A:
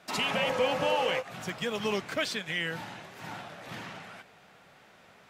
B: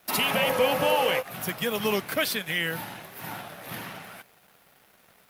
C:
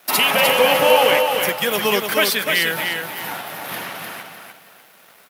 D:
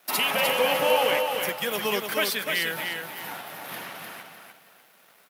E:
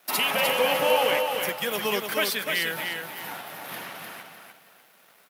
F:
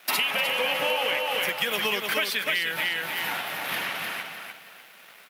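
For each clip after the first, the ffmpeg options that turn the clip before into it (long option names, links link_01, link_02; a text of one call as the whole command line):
ffmpeg -i in.wav -af "aexciter=amount=7.1:drive=6.8:freq=10000,aeval=exprs='sgn(val(0))*max(abs(val(0))-0.00141,0)':channel_layout=same,volume=4.5dB" out.wav
ffmpeg -i in.wav -filter_complex "[0:a]highpass=frequency=400:poles=1,asplit=2[link_01][link_02];[link_02]aecho=0:1:301|602|903|1204:0.562|0.157|0.0441|0.0123[link_03];[link_01][link_03]amix=inputs=2:normalize=0,volume=9dB" out.wav
ffmpeg -i in.wav -af "highpass=92,volume=-8dB" out.wav
ffmpeg -i in.wav -af anull out.wav
ffmpeg -i in.wav -af "equalizer=frequency=2500:width=0.78:gain=8.5,acompressor=threshold=-26dB:ratio=6,volume=3dB" out.wav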